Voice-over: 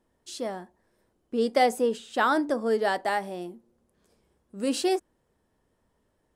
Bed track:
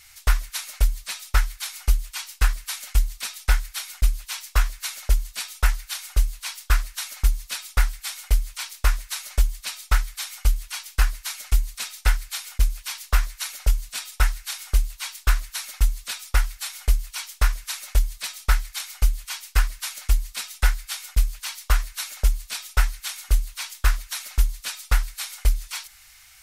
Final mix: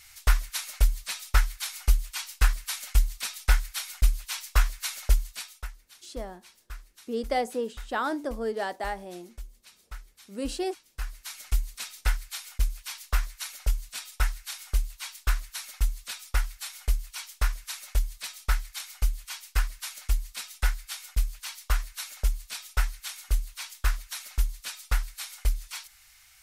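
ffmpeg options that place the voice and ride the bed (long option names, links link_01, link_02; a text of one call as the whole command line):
ffmpeg -i stem1.wav -i stem2.wav -filter_complex "[0:a]adelay=5750,volume=-5.5dB[link_01];[1:a]volume=14dB,afade=type=out:start_time=5.12:duration=0.57:silence=0.1,afade=type=in:start_time=10.88:duration=0.58:silence=0.158489[link_02];[link_01][link_02]amix=inputs=2:normalize=0" out.wav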